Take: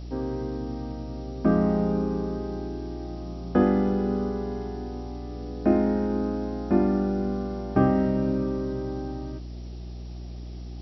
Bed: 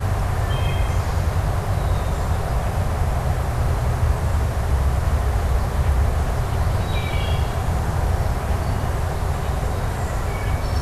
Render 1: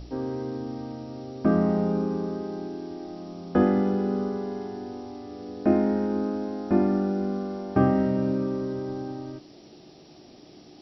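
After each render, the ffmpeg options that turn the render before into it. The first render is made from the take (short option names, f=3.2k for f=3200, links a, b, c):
-af "bandreject=f=60:t=h:w=4,bandreject=f=120:t=h:w=4,bandreject=f=180:t=h:w=4,bandreject=f=240:t=h:w=4"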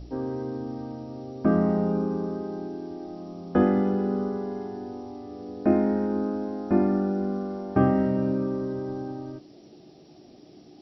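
-af "afftdn=nr=6:nf=-50"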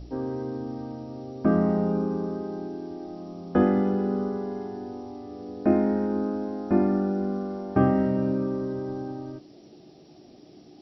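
-af anull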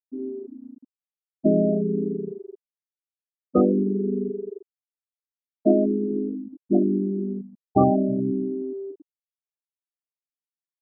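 -af "afftfilt=real='re*gte(hypot(re,im),0.224)':imag='im*gte(hypot(re,im),0.224)':win_size=1024:overlap=0.75,equalizer=f=870:t=o:w=1.9:g=9"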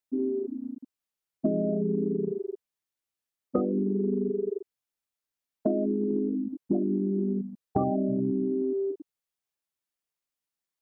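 -filter_complex "[0:a]asplit=2[a][b];[b]alimiter=limit=-15.5dB:level=0:latency=1:release=56,volume=-1dB[c];[a][c]amix=inputs=2:normalize=0,acompressor=threshold=-24dB:ratio=6"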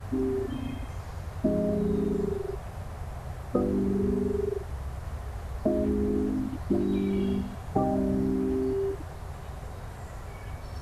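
-filter_complex "[1:a]volume=-16.5dB[a];[0:a][a]amix=inputs=2:normalize=0"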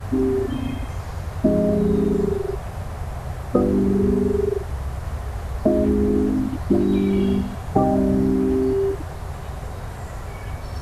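-af "volume=8dB"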